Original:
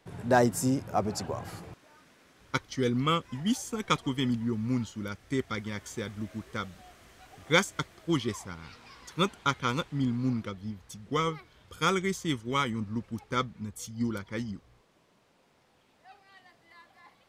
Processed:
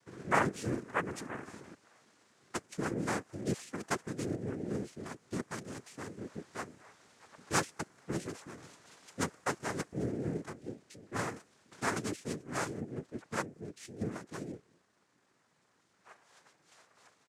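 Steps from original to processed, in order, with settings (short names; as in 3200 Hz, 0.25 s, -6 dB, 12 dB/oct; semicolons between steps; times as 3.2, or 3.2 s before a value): comb 1.4 ms, depth 39%; noise vocoder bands 3; dynamic EQ 3700 Hz, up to -7 dB, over -53 dBFS, Q 1.1; gain -6.5 dB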